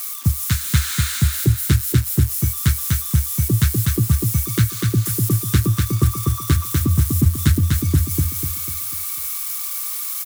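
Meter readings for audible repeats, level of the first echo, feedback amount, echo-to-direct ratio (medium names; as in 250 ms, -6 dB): 5, -3.0 dB, 42%, -2.0 dB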